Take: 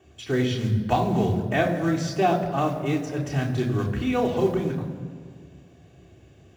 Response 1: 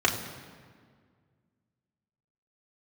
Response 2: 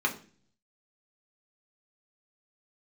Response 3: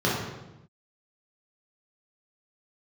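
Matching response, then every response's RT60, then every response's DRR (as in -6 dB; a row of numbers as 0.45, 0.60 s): 1; 1.8, 0.40, 0.95 s; -2.0, -0.5, -6.5 dB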